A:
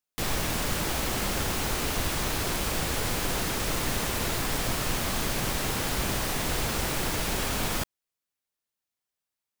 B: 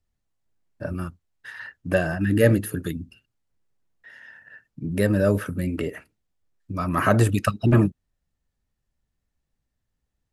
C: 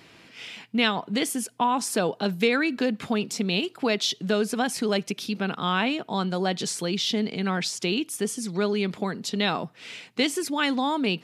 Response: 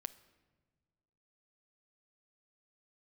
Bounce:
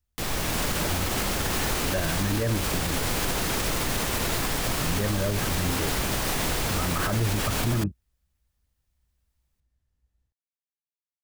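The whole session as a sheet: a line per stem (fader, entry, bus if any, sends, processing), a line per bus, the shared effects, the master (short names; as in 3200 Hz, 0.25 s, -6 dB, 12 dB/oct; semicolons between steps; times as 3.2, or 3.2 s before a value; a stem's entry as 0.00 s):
-1.0 dB, 0.00 s, bus A, no send, dry
-8.0 dB, 0.00 s, bus A, no send, bell 62 Hz +14 dB 1 oct; treble ducked by the level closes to 3000 Hz
off
bus A: 0.0 dB, AGC gain up to 5 dB; limiter -16.5 dBFS, peak gain reduction 11 dB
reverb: off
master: dry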